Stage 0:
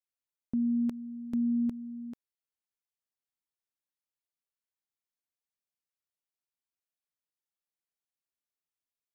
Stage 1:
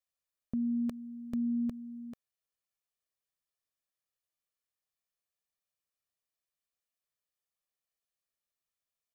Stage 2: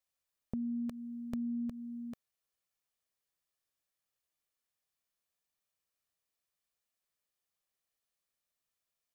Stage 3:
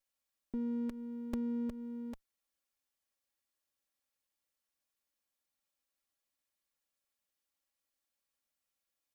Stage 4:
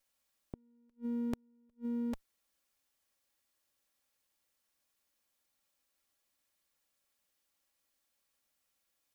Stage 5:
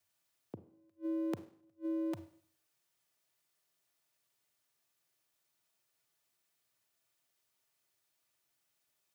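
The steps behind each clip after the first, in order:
comb 1.7 ms, depth 47%
dynamic bell 330 Hz, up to -5 dB, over -50 dBFS, Q 1.9; compression, threshold -37 dBFS, peak gain reduction 5.5 dB; trim +2.5 dB
comb filter that takes the minimum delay 3.6 ms; trim +1 dB
inverted gate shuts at -35 dBFS, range -39 dB; trim +7 dB
frequency shift +87 Hz; Schroeder reverb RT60 0.55 s, combs from 33 ms, DRR 12 dB

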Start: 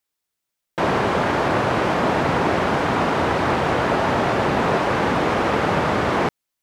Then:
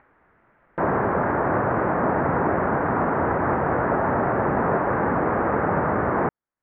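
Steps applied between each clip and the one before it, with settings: steep low-pass 1.8 kHz 36 dB/octave; upward compressor, threshold -32 dBFS; trim -2 dB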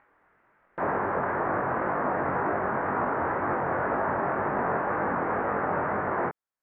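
bass shelf 360 Hz -8.5 dB; chorus 2 Hz, delay 19.5 ms, depth 3.3 ms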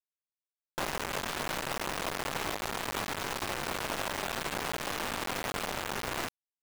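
compression 5:1, threshold -32 dBFS, peak gain reduction 8.5 dB; Chebyshev shaper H 4 -25 dB, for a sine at -22 dBFS; bit crusher 5-bit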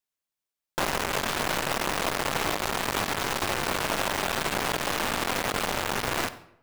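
reverberation RT60 0.75 s, pre-delay 48 ms, DRR 14.5 dB; trim +6.5 dB

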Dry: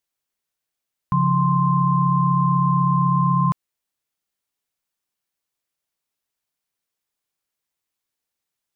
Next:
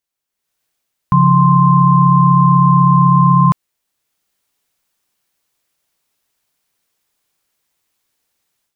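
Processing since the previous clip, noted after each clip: level rider gain up to 13 dB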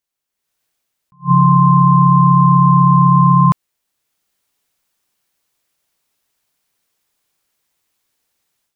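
attacks held to a fixed rise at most 330 dB/s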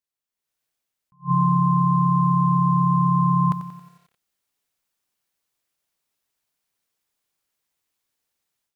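bit-crushed delay 91 ms, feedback 55%, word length 7-bit, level -11 dB; trim -9 dB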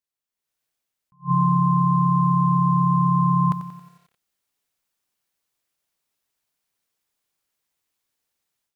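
no audible change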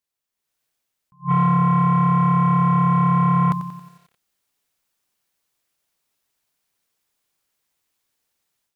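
saturation -15 dBFS, distortion -16 dB; trim +4 dB

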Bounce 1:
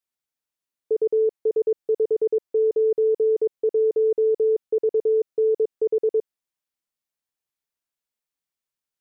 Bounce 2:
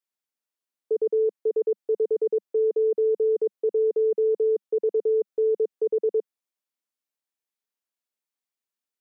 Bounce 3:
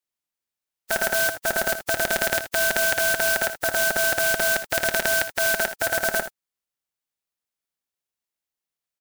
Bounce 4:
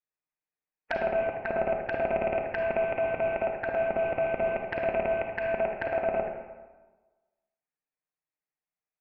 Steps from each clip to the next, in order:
Chebyshev high-pass 200 Hz, order 4; trim -2 dB
spectral contrast reduction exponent 0.28; ring modulator 1.1 kHz; early reflections 61 ms -15 dB, 78 ms -12.5 dB; trim +4 dB
rippled Chebyshev low-pass 2.6 kHz, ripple 3 dB; touch-sensitive flanger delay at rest 6.5 ms, full sweep at -23.5 dBFS; on a send at -3 dB: reverberation RT60 1.3 s, pre-delay 34 ms

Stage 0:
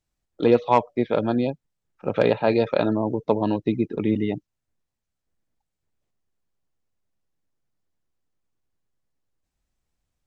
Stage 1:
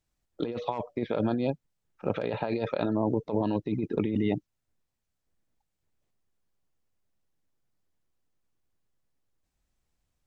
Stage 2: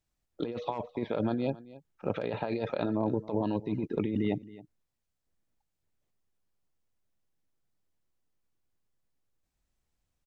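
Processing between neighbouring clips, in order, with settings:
compressor with a negative ratio -25 dBFS, ratio -1; trim -3.5 dB
delay 270 ms -19 dB; trim -2.5 dB

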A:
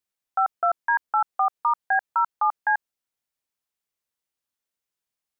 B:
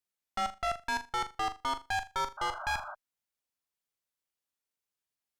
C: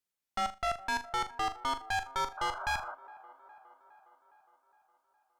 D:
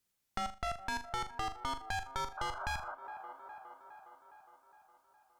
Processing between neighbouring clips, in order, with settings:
valve stage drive 29 dB, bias 0.75; flutter echo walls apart 6.9 m, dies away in 0.24 s; painted sound noise, 2.37–2.95 s, 580–1600 Hz -42 dBFS
feedback echo behind a band-pass 412 ms, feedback 60%, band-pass 670 Hz, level -17 dB
tone controls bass +7 dB, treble +2 dB; compression 2.5:1, threshold -45 dBFS, peak gain reduction 12 dB; trim +5.5 dB

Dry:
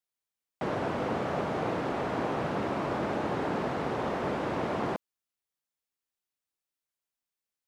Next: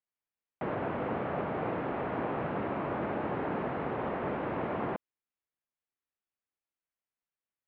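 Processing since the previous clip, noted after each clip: low-pass 2.7 kHz 24 dB/octave; trim -2.5 dB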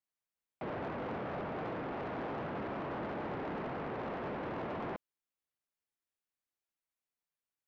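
saturation -32.5 dBFS, distortion -12 dB; trim -2 dB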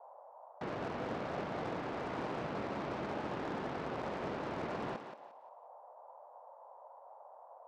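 power-law waveshaper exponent 3; thinning echo 176 ms, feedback 29%, high-pass 310 Hz, level -7.5 dB; band noise 530–1000 Hz -58 dBFS; trim +3 dB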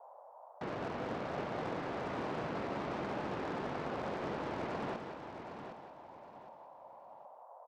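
feedback delay 764 ms, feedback 29%, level -8.5 dB

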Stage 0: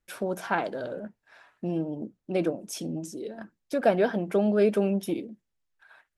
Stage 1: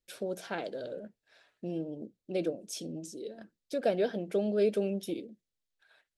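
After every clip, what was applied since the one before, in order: graphic EQ 500/1000/4000/8000 Hz +7/-9/+8/+4 dB; trim -8.5 dB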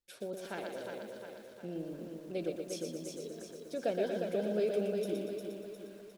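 feedback delay 355 ms, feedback 53%, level -6 dB; bit-crushed delay 119 ms, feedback 55%, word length 9-bit, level -5 dB; trim -5.5 dB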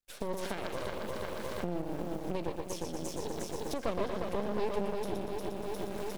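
recorder AGC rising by 45 dB/s; half-wave rectifier; trim +3 dB

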